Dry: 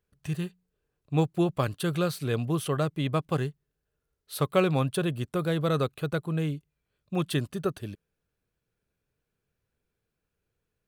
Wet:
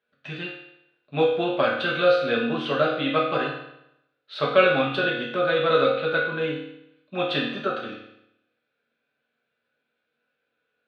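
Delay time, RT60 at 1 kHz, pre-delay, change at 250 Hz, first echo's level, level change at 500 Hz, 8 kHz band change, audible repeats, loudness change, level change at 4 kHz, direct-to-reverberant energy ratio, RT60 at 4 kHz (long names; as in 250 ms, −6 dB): no echo audible, 0.80 s, 4 ms, 0.0 dB, no echo audible, +8.0 dB, below −15 dB, no echo audible, +5.5 dB, +9.0 dB, −5.5 dB, 0.75 s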